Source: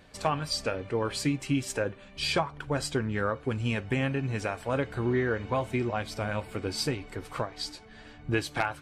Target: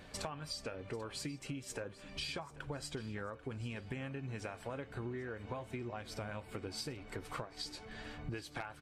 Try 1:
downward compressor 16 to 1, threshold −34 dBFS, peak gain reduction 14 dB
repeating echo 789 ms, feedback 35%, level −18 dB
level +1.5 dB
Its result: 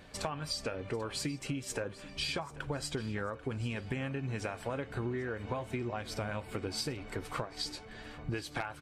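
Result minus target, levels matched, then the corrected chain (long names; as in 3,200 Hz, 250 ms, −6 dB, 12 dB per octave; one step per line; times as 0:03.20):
downward compressor: peak gain reduction −6 dB
downward compressor 16 to 1, threshold −40.5 dBFS, peak gain reduction 20 dB
repeating echo 789 ms, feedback 35%, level −18 dB
level +1.5 dB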